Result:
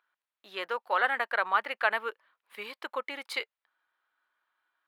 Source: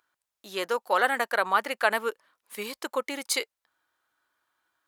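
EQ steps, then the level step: distance through air 470 m; tilt EQ +3.5 dB/octave; bass shelf 350 Hz -6.5 dB; 0.0 dB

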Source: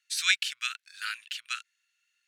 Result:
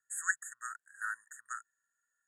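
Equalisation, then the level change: brick-wall FIR band-stop 1.9–6.6 kHz; distance through air 55 m; tone controls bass -1 dB, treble +4 dB; 0.0 dB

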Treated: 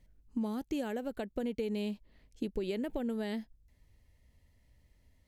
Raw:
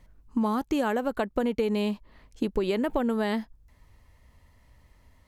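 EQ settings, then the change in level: peaking EQ 1.1 kHz -12.5 dB 0.93 oct; -7.5 dB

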